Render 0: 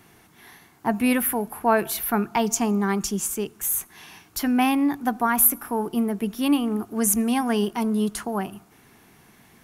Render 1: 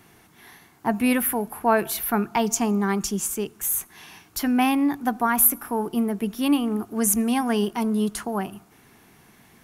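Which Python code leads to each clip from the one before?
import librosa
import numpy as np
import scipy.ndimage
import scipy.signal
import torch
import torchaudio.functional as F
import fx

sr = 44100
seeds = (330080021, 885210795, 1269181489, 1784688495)

y = x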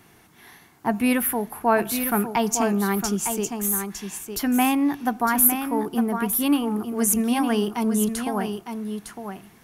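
y = x + 10.0 ** (-7.5 / 20.0) * np.pad(x, (int(907 * sr / 1000.0), 0))[:len(x)]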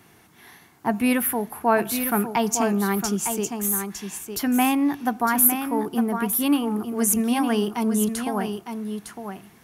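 y = scipy.signal.sosfilt(scipy.signal.butter(2, 49.0, 'highpass', fs=sr, output='sos'), x)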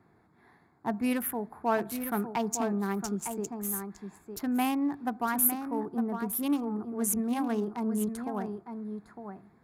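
y = fx.wiener(x, sr, points=15)
y = F.gain(torch.from_numpy(y), -7.5).numpy()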